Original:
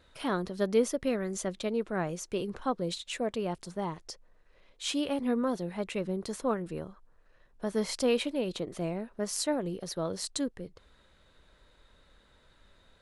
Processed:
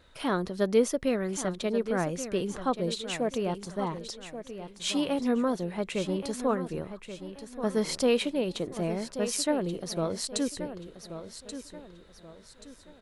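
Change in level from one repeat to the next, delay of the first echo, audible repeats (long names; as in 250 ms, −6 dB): −9.0 dB, 1,131 ms, 3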